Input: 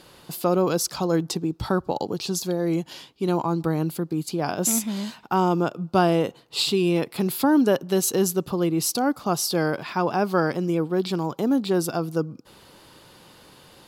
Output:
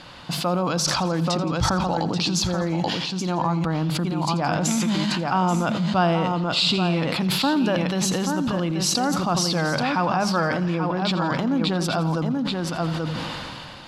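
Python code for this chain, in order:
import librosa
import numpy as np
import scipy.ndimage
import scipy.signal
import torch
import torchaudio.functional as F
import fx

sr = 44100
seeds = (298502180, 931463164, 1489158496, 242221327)

p1 = scipy.signal.sosfilt(scipy.signal.butter(2, 4400.0, 'lowpass', fs=sr, output='sos'), x)
p2 = fx.hum_notches(p1, sr, base_hz=50, count=4)
p3 = p2 + 10.0 ** (-8.0 / 20.0) * np.pad(p2, (int(833 * sr / 1000.0), 0))[:len(p2)]
p4 = fx.over_compress(p3, sr, threshold_db=-30.0, ratio=-1.0)
p5 = p3 + (p4 * 10.0 ** (1.0 / 20.0))
p6 = fx.peak_eq(p5, sr, hz=400.0, db=-13.5, octaves=0.64)
p7 = fx.echo_feedback(p6, sr, ms=85, feedback_pct=60, wet_db=-16.0)
y = fx.sustainer(p7, sr, db_per_s=21.0)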